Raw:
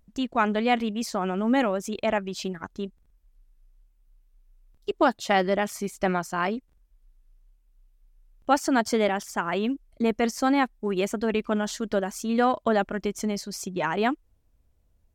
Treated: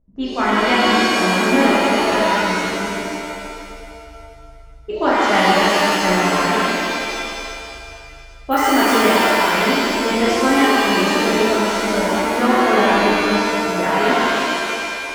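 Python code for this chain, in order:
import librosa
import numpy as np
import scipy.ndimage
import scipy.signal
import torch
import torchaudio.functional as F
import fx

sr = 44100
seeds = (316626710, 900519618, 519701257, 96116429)

y = fx.env_lowpass(x, sr, base_hz=630.0, full_db=-20.5)
y = fx.resample_bad(y, sr, factor=3, down='none', up='hold', at=(8.51, 8.98))
y = fx.rev_shimmer(y, sr, seeds[0], rt60_s=2.2, semitones=7, shimmer_db=-2, drr_db=-10.0)
y = y * librosa.db_to_amplitude(-2.5)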